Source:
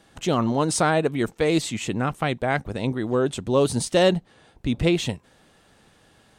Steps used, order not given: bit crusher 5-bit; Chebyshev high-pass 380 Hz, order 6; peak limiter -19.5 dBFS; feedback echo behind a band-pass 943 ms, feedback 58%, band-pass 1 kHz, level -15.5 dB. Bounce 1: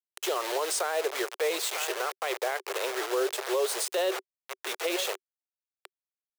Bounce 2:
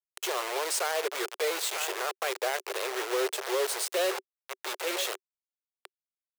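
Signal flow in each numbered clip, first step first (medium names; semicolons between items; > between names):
feedback echo behind a band-pass > bit crusher > Chebyshev high-pass > peak limiter; feedback echo behind a band-pass > peak limiter > bit crusher > Chebyshev high-pass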